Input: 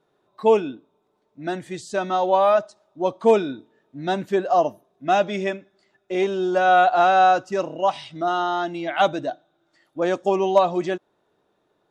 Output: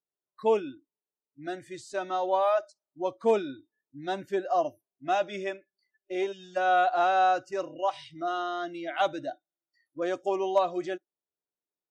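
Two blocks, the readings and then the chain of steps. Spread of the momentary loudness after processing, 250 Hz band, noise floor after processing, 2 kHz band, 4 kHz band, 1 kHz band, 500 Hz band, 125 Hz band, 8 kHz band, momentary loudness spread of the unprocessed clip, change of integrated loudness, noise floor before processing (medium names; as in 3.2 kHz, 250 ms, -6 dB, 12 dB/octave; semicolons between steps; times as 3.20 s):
16 LU, -9.0 dB, under -85 dBFS, -7.5 dB, -7.5 dB, -7.5 dB, -8.0 dB, -14.0 dB, no reading, 15 LU, -7.5 dB, -70 dBFS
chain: dynamic bell 170 Hz, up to -7 dB, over -45 dBFS, Q 3.4; spectral noise reduction 26 dB; time-frequency box 6.32–6.57 s, 210–1600 Hz -23 dB; trim -7.5 dB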